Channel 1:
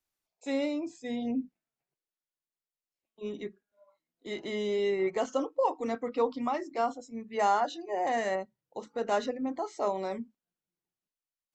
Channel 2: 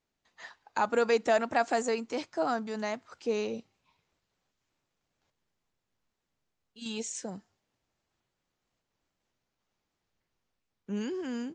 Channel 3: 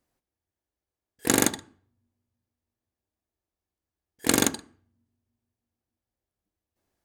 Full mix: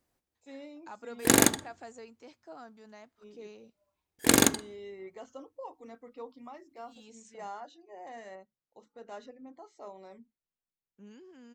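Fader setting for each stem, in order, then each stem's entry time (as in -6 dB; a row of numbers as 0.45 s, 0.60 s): -16.0 dB, -18.0 dB, +0.5 dB; 0.00 s, 0.10 s, 0.00 s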